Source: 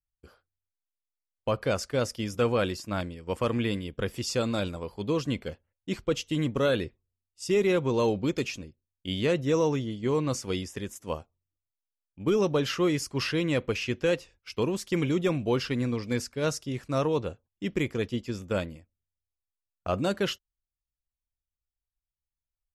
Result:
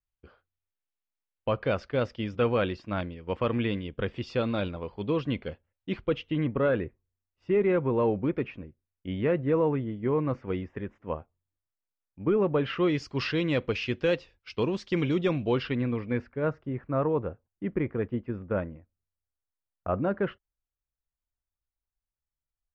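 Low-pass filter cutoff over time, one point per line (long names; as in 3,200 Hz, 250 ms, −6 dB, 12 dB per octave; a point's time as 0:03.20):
low-pass filter 24 dB per octave
0:05.94 3,400 Hz
0:06.73 2,100 Hz
0:12.48 2,100 Hz
0:13.05 4,600 Hz
0:15.33 4,600 Hz
0:16.47 1,800 Hz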